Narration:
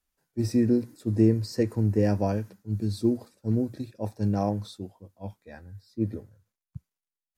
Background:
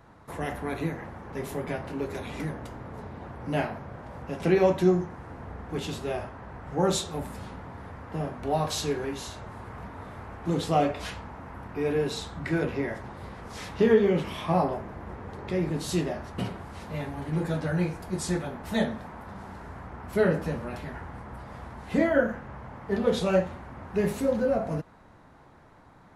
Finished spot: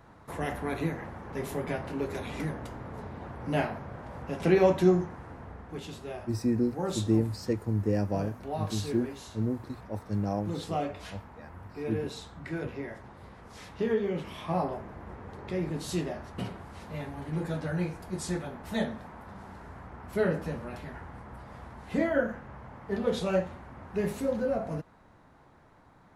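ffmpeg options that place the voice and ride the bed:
-filter_complex "[0:a]adelay=5900,volume=-4.5dB[a];[1:a]volume=3.5dB,afade=t=out:st=4.99:d=0.84:silence=0.421697,afade=t=in:st=14.07:d=0.77:silence=0.630957[b];[a][b]amix=inputs=2:normalize=0"

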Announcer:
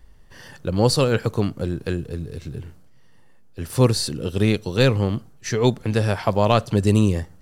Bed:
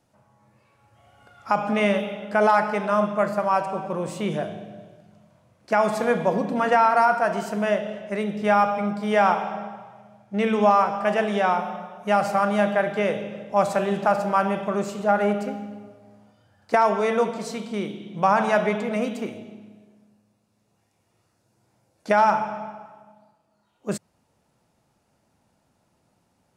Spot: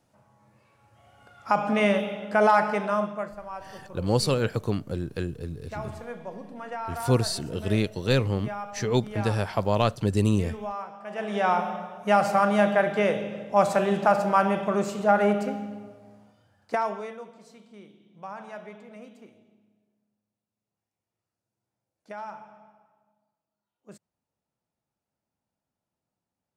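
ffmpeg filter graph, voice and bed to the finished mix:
-filter_complex "[0:a]adelay=3300,volume=-5.5dB[a];[1:a]volume=15.5dB,afade=t=out:st=2.72:d=0.63:silence=0.16788,afade=t=in:st=11.09:d=0.5:silence=0.149624,afade=t=out:st=16.07:d=1.11:silence=0.1[b];[a][b]amix=inputs=2:normalize=0"

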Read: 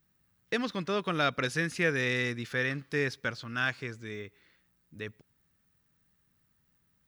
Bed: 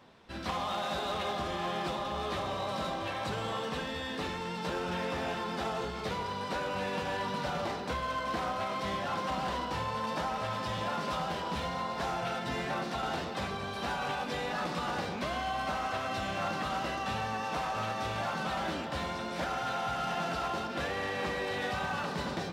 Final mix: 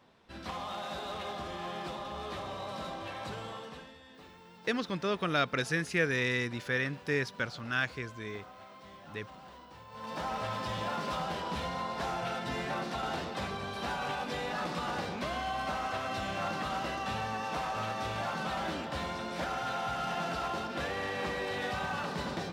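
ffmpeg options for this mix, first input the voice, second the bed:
-filter_complex "[0:a]adelay=4150,volume=-1dB[a];[1:a]volume=11.5dB,afade=t=out:st=3.31:d=0.67:silence=0.237137,afade=t=in:st=9.89:d=0.43:silence=0.149624[b];[a][b]amix=inputs=2:normalize=0"

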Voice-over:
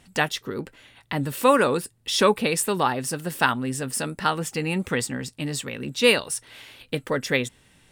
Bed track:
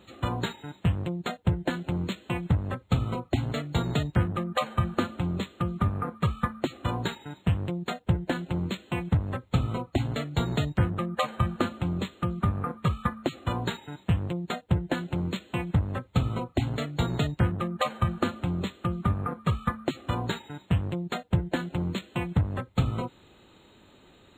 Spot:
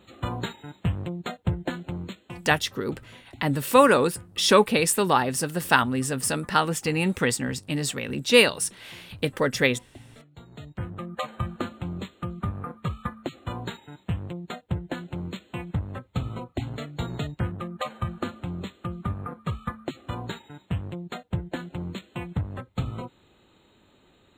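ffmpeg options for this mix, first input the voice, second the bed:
-filter_complex "[0:a]adelay=2300,volume=1.5dB[a];[1:a]volume=15.5dB,afade=t=out:st=1.63:d=0.99:silence=0.105925,afade=t=in:st=10.51:d=0.64:silence=0.149624[b];[a][b]amix=inputs=2:normalize=0"

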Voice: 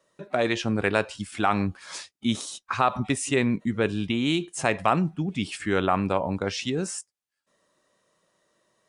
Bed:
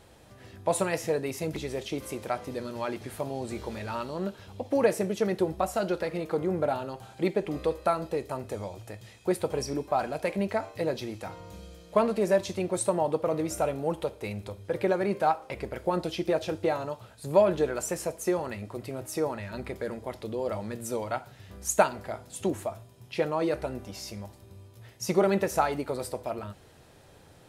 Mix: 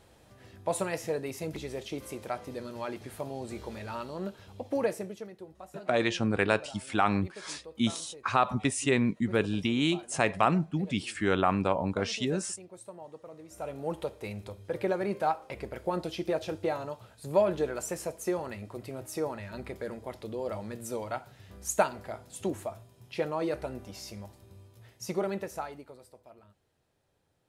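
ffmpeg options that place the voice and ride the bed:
-filter_complex "[0:a]adelay=5550,volume=-2.5dB[a];[1:a]volume=12dB,afade=t=out:st=4.73:d=0.58:silence=0.16788,afade=t=in:st=13.48:d=0.46:silence=0.158489,afade=t=out:st=24.59:d=1.42:silence=0.141254[b];[a][b]amix=inputs=2:normalize=0"

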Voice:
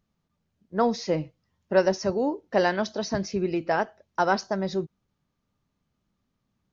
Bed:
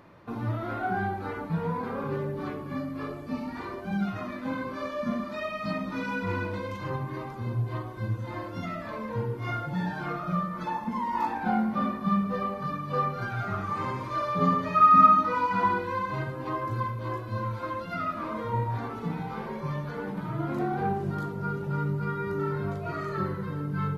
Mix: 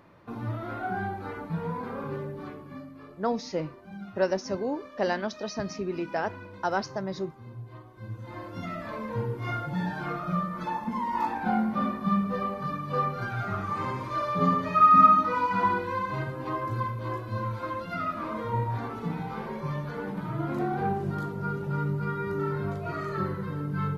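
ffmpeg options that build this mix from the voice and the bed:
-filter_complex "[0:a]adelay=2450,volume=-5dB[a];[1:a]volume=10dB,afade=t=out:st=2.02:d=1:silence=0.316228,afade=t=in:st=7.92:d=0.91:silence=0.237137[b];[a][b]amix=inputs=2:normalize=0"

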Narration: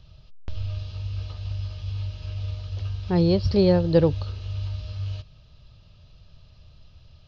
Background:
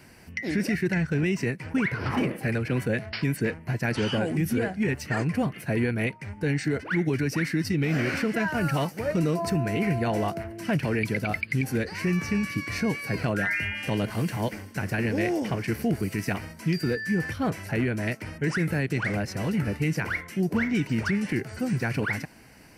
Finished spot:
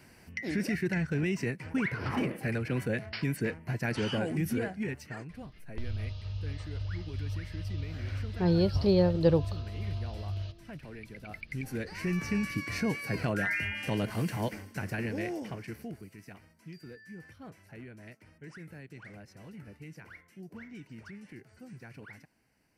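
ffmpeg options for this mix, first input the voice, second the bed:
-filter_complex "[0:a]adelay=5300,volume=-5.5dB[a];[1:a]volume=10.5dB,afade=t=out:st=4.52:d=0.78:silence=0.188365,afade=t=in:st=11.17:d=1.21:silence=0.16788,afade=t=out:st=14.39:d=1.71:silence=0.141254[b];[a][b]amix=inputs=2:normalize=0"

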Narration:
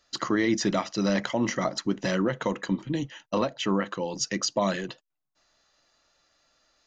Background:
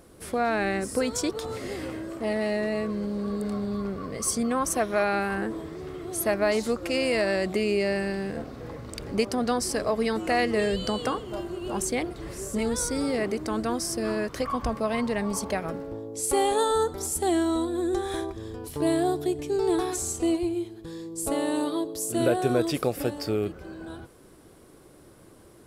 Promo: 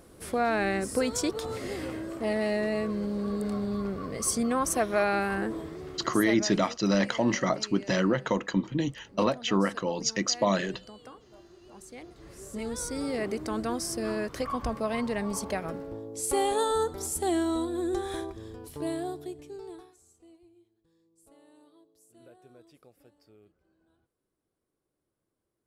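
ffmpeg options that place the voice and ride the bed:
-filter_complex "[0:a]adelay=5850,volume=0.5dB[a];[1:a]volume=16dB,afade=t=out:st=5.59:d=0.98:silence=0.112202,afade=t=in:st=11.88:d=1.49:silence=0.141254,afade=t=out:st=17.97:d=1.97:silence=0.0375837[b];[a][b]amix=inputs=2:normalize=0"

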